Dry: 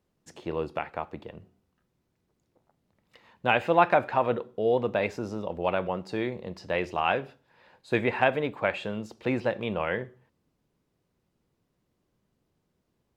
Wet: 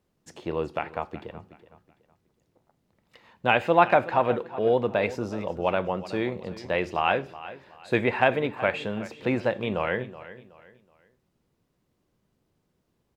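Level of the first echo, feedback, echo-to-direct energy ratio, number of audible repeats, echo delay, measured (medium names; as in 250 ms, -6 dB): -16.0 dB, 32%, -15.5 dB, 2, 373 ms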